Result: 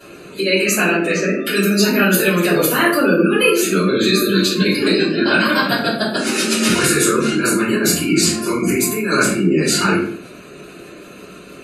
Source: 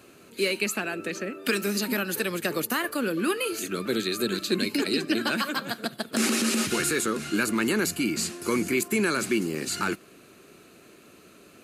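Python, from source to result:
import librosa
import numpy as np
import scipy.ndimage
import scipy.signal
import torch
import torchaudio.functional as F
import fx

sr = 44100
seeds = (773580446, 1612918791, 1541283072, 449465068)

y = fx.over_compress(x, sr, threshold_db=-27.0, ratio=-0.5)
y = fx.spec_gate(y, sr, threshold_db=-25, keep='strong')
y = fx.peak_eq(y, sr, hz=96.0, db=-6.0, octaves=0.83)
y = fx.room_shoebox(y, sr, seeds[0], volume_m3=64.0, walls='mixed', distance_m=3.1)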